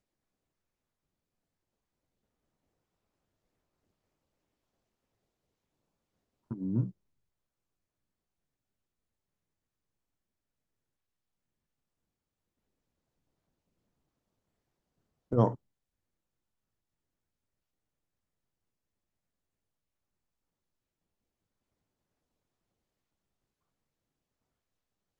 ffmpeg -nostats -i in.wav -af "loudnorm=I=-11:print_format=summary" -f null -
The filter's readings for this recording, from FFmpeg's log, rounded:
Input Integrated:    -31.6 LUFS
Input True Peak:     -11.7 dBTP
Input LRA:             4.2 LU
Input Threshold:     -42.7 LUFS